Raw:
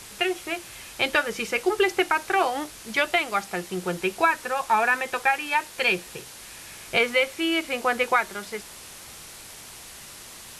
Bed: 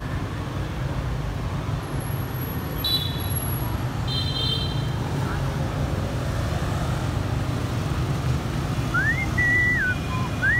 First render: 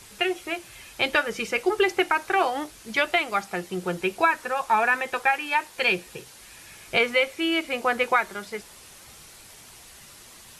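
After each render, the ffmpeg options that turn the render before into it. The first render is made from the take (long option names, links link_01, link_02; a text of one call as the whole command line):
ffmpeg -i in.wav -af "afftdn=noise_reduction=6:noise_floor=-43" out.wav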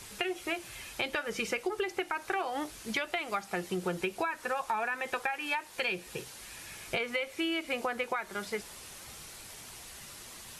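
ffmpeg -i in.wav -af "alimiter=limit=-15.5dB:level=0:latency=1:release=324,acompressor=threshold=-29dB:ratio=6" out.wav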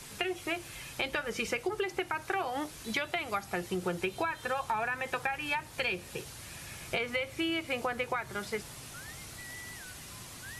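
ffmpeg -i in.wav -i bed.wav -filter_complex "[1:a]volume=-27dB[link_01];[0:a][link_01]amix=inputs=2:normalize=0" out.wav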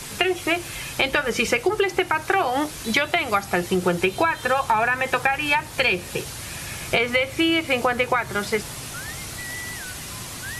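ffmpeg -i in.wav -af "volume=12dB" out.wav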